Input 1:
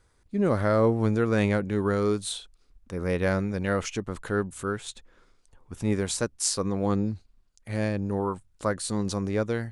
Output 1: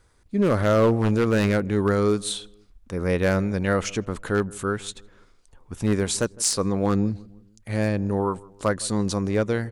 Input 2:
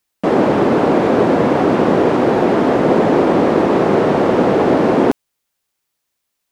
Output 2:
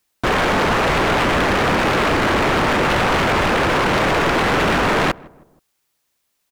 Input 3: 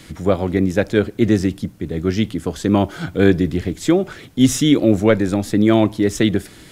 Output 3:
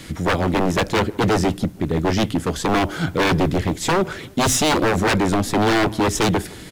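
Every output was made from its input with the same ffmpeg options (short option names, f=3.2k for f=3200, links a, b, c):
-filter_complex "[0:a]aeval=exprs='0.158*(abs(mod(val(0)/0.158+3,4)-2)-1)':c=same,asplit=2[a][b];[b]adelay=159,lowpass=f=1k:p=1,volume=-21.5dB,asplit=2[c][d];[d]adelay=159,lowpass=f=1k:p=1,volume=0.48,asplit=2[e][f];[f]adelay=159,lowpass=f=1k:p=1,volume=0.48[g];[a][c][e][g]amix=inputs=4:normalize=0,volume=4dB"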